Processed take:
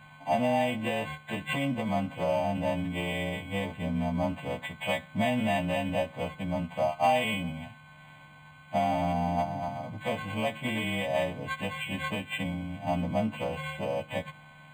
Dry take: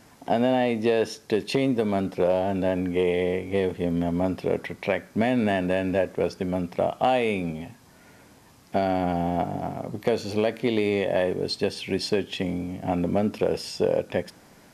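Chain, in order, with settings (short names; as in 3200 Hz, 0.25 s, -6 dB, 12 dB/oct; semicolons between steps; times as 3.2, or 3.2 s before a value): frequency quantiser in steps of 2 st; high shelf 11000 Hz +10 dB; fixed phaser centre 1500 Hz, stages 6; decimation joined by straight lines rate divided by 8×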